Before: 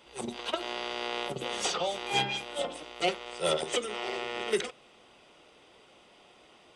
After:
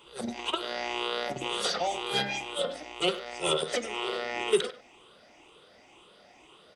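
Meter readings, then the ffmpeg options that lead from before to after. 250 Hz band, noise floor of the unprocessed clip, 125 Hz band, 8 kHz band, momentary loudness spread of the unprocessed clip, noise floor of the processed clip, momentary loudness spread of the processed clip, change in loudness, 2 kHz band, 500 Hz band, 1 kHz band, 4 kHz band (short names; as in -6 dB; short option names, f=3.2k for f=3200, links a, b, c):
+2.5 dB, -59 dBFS, 0.0 dB, 0.0 dB, 6 LU, -57 dBFS, 5 LU, +1.5 dB, +1.0 dB, +2.0 dB, +1.0 dB, +2.0 dB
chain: -filter_complex "[0:a]afftfilt=real='re*pow(10,11/40*sin(2*PI*(0.67*log(max(b,1)*sr/1024/100)/log(2)-(2)*(pts-256)/sr)))':imag='im*pow(10,11/40*sin(2*PI*(0.67*log(max(b,1)*sr/1024/100)/log(2)-(2)*(pts-256)/sr)))':win_size=1024:overlap=0.75,asplit=2[a][b];[b]adelay=100,highpass=300,lowpass=3.4k,asoftclip=type=hard:threshold=-21.5dB,volume=-14dB[c];[a][c]amix=inputs=2:normalize=0"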